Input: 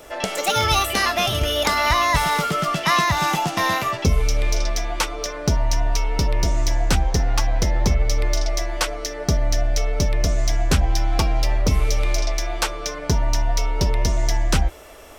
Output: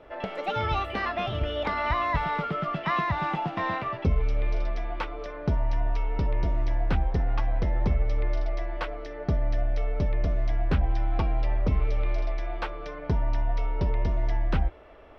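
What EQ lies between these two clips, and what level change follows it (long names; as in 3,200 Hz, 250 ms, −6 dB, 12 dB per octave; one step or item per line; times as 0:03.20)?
high-frequency loss of the air 390 metres
high-shelf EQ 6,000 Hz −7 dB
−5.5 dB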